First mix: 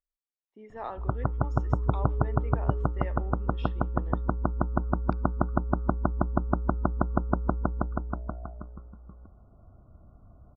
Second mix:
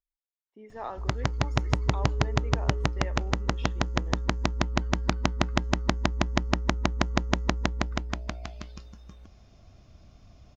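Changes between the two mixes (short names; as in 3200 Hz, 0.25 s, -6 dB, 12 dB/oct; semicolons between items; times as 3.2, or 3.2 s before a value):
background: remove brick-wall FIR low-pass 1500 Hz; master: remove air absorption 61 m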